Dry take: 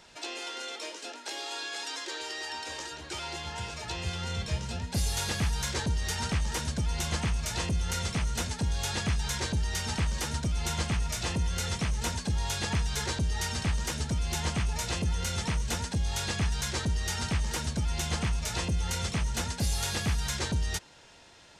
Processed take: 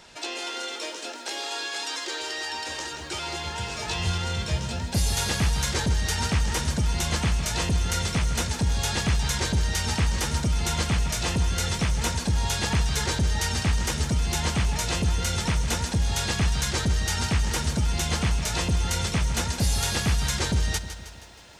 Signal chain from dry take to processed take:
0:03.69–0:04.18: double-tracking delay 22 ms −2 dB
feedback echo at a low word length 158 ms, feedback 55%, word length 10 bits, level −11 dB
level +5 dB

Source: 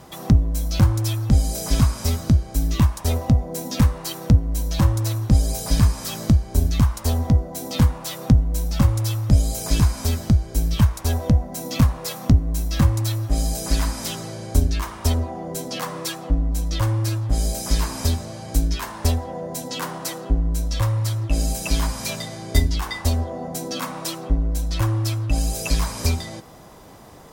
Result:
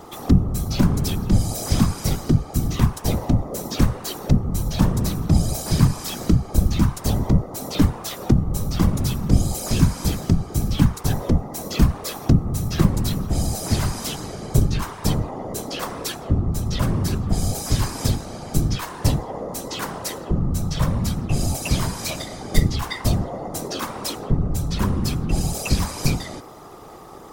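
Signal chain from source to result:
hum with harmonics 400 Hz, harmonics 3, −44 dBFS −2 dB per octave
random phases in short frames

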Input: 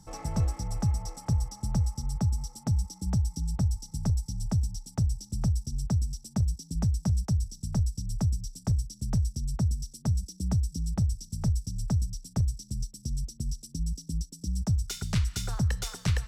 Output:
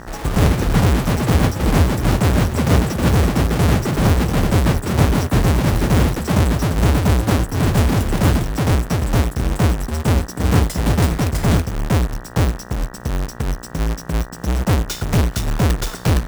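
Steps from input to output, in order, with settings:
each half-wave held at its own peak
delay with pitch and tempo change per echo 163 ms, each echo +6 semitones, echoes 3
hum with harmonics 60 Hz, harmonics 32, −44 dBFS −2 dB per octave
level +6.5 dB

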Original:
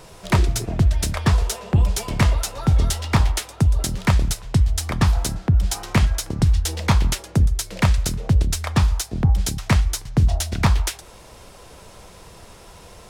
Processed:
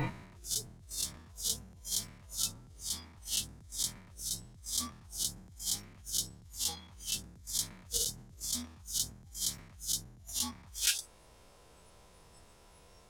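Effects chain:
peak hold with a rise ahead of every peak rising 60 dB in 1.24 s
0:07.69–0:08.33: mains-hum notches 50/100 Hz
compressor whose output falls as the input rises −24 dBFS, ratio −1
noise reduction from a noise print of the clip's start 20 dB
level −7 dB

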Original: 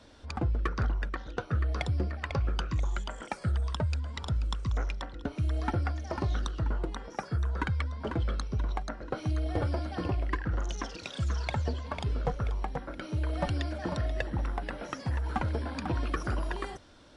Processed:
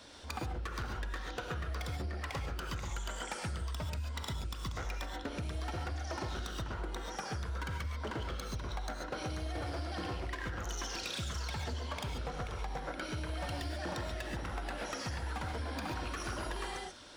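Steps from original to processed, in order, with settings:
spectral tilt +2 dB per octave
gain into a clipping stage and back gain 33 dB
reverb whose tail is shaped and stops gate 160 ms rising, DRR 2.5 dB
downward compressor, threshold −37 dBFS, peak gain reduction 7.5 dB
level +2 dB

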